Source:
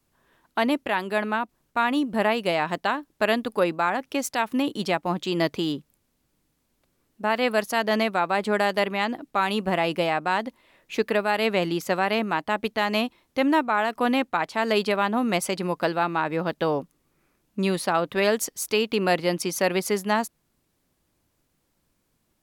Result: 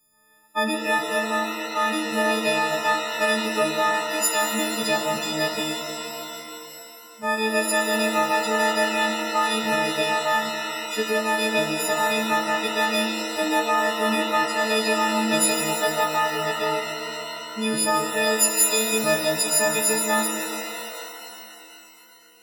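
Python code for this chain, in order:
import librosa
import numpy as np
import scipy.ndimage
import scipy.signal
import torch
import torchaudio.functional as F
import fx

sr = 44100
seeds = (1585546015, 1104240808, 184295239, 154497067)

y = fx.freq_snap(x, sr, grid_st=6)
y = fx.hum_notches(y, sr, base_hz=50, count=3)
y = fx.rev_shimmer(y, sr, seeds[0], rt60_s=3.0, semitones=7, shimmer_db=-2, drr_db=4.0)
y = y * 10.0 ** (-4.5 / 20.0)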